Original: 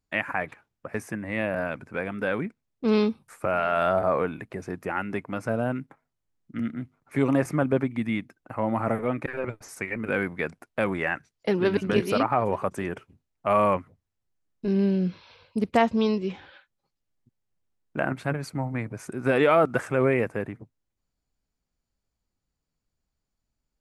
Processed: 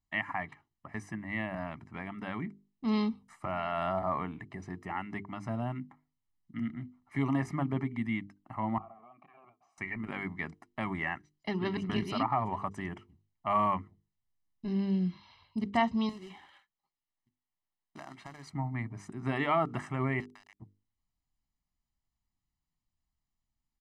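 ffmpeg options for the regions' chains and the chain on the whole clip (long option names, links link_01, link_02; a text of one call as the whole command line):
ffmpeg -i in.wav -filter_complex "[0:a]asettb=1/sr,asplit=3[link_01][link_02][link_03];[link_01]atrim=end=8.784[link_04];[link_02]atrim=start=8.78:end=9.78,asetpts=PTS-STARTPTS,afade=type=in:duration=0.004:curve=qsin,afade=type=out:start_time=0.996:duration=0.004:curve=qsin,acompressor=threshold=-29dB:ratio=6:attack=3.2:release=140:knee=1:detection=peak,asplit=3[link_05][link_06][link_07];[link_05]bandpass=frequency=730:width_type=q:width=8,volume=0dB[link_08];[link_06]bandpass=frequency=1090:width_type=q:width=8,volume=-6dB[link_09];[link_07]bandpass=frequency=2440:width_type=q:width=8,volume=-9dB[link_10];[link_08][link_09][link_10]amix=inputs=3:normalize=0,equalizer=frequency=180:width=1.5:gain=6.5[link_11];[link_03]atrim=start=9.776[link_12];[link_04][link_11]acrossfade=duration=0.004:curve1=hsin:curve2=qsin[link_13];[link_13][link_12]acrossfade=duration=0.004:curve1=qsin:curve2=hsin,asettb=1/sr,asplit=3[link_14][link_15][link_16];[link_14]atrim=end=16.094[link_17];[link_15]atrim=start=16.09:end=18.47,asetpts=PTS-STARTPTS,afade=type=in:duration=0.004:curve=qsin,afade=type=out:start_time=2.376:duration=0.004:curve=qsin,bass=frequency=250:gain=-13,treble=frequency=4000:gain=-5,acompressor=threshold=-33dB:ratio=5:attack=3.2:release=140:knee=1:detection=peak,acrusher=bits=3:mode=log:mix=0:aa=0.000001[link_18];[link_16]atrim=start=18.466[link_19];[link_17][link_18]acrossfade=duration=0.004:curve1=hsin:curve2=qsin[link_20];[link_20][link_19]acrossfade=duration=0.004:curve1=qsin:curve2=hsin,asettb=1/sr,asplit=3[link_21][link_22][link_23];[link_21]atrim=end=20.204[link_24];[link_22]atrim=start=20.2:end=20.6,asetpts=PTS-STARTPTS,afade=type=in:duration=0.004:curve=qsin,afade=type=out:start_time=0.396:duration=0.004:curve=qsin,highpass=frequency=810:width=0.5412,highpass=frequency=810:width=1.3066,acompressor=threshold=-43dB:ratio=16:attack=3.2:release=140:knee=1:detection=peak,aeval=exprs='val(0)*gte(abs(val(0)),0.00531)':channel_layout=same[link_25];[link_23]atrim=start=20.596[link_26];[link_24][link_25]acrossfade=duration=0.004:curve1=hsin:curve2=qsin[link_27];[link_27][link_26]acrossfade=duration=0.004:curve1=qsin:curve2=hsin,lowpass=6400,bandreject=frequency=50:width_type=h:width=6,bandreject=frequency=100:width_type=h:width=6,bandreject=frequency=150:width_type=h:width=6,bandreject=frequency=200:width_type=h:width=6,bandreject=frequency=250:width_type=h:width=6,bandreject=frequency=300:width_type=h:width=6,bandreject=frequency=350:width_type=h:width=6,bandreject=frequency=400:width_type=h:width=6,bandreject=frequency=450:width_type=h:width=6,aecho=1:1:1:0.93,volume=-8.5dB" out.wav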